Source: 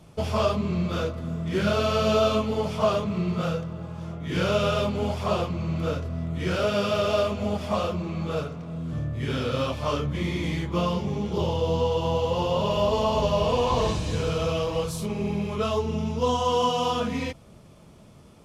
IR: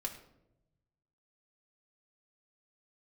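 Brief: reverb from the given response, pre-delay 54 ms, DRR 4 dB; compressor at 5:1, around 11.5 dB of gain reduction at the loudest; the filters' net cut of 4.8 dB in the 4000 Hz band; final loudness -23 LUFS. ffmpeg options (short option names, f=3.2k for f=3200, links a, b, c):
-filter_complex "[0:a]equalizer=f=4k:t=o:g=-7,acompressor=threshold=-32dB:ratio=5,asplit=2[a][b];[1:a]atrim=start_sample=2205,adelay=54[c];[b][c]afir=irnorm=-1:irlink=0,volume=-4dB[d];[a][d]amix=inputs=2:normalize=0,volume=11dB"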